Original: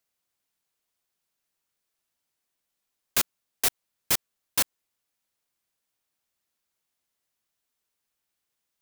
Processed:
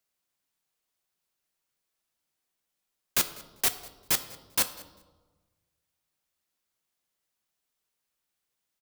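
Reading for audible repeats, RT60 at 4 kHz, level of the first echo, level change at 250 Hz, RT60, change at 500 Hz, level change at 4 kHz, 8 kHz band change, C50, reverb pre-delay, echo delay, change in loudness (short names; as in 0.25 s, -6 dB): 1, 0.85 s, -21.5 dB, -0.5 dB, 1.3 s, -1.0 dB, -1.0 dB, -1.0 dB, 13.0 dB, 5 ms, 0.197 s, -1.0 dB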